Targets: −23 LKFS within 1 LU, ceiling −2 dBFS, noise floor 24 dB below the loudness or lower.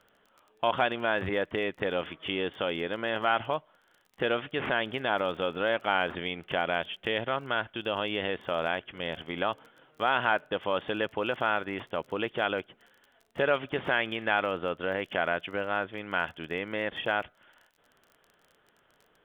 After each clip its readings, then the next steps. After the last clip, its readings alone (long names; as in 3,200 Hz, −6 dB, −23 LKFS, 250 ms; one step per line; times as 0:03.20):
crackle rate 26 per second; integrated loudness −30.5 LKFS; sample peak −10.5 dBFS; target loudness −23.0 LKFS
→ click removal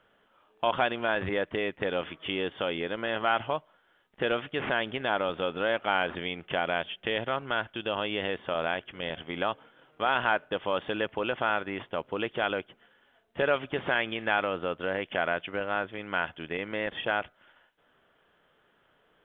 crackle rate 0 per second; integrated loudness −30.5 LKFS; sample peak −10.5 dBFS; target loudness −23.0 LKFS
→ level +7.5 dB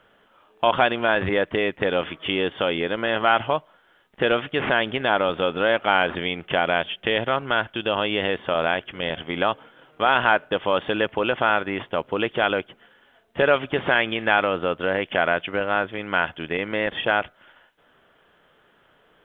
integrated loudness −23.0 LKFS; sample peak −3.0 dBFS; background noise floor −60 dBFS